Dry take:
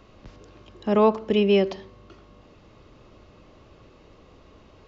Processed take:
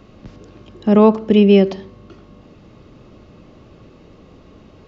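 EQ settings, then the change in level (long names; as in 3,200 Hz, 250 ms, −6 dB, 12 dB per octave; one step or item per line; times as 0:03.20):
parametric band 190 Hz +8 dB 1.9 octaves
notch filter 1,000 Hz, Q 18
+3.5 dB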